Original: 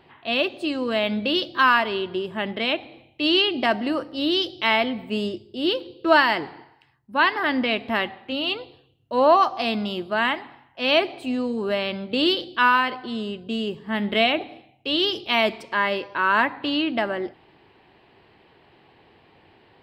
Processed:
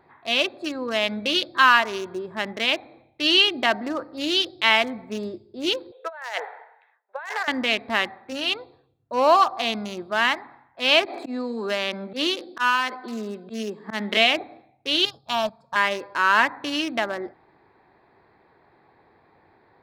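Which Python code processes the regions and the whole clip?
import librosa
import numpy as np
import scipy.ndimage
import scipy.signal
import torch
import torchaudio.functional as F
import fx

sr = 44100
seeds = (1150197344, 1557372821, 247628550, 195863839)

y = fx.chain(x, sr, fx.cheby1_bandpass(low_hz=460.0, high_hz=3700.0, order=5),
    fx.peak_eq(hz=1100.0, db=-8.0, octaves=0.53),
    fx.over_compress(threshold_db=-31.0, ratio=-1.0), at=(5.92, 7.48))
y = fx.chain(y, sr, fx.steep_highpass(hz=180.0, slope=48),
    fx.auto_swell(attack_ms=113.0),
    fx.band_squash(depth_pct=70), at=(11.05, 14.17))
y = fx.chain(y, sr, fx.peak_eq(hz=140.0, db=11.0, octaves=1.1),
    fx.transient(attack_db=1, sustain_db=-10),
    fx.fixed_phaser(hz=880.0, stages=4), at=(15.05, 15.76))
y = fx.wiener(y, sr, points=15)
y = fx.tilt_shelf(y, sr, db=-5.5, hz=820.0)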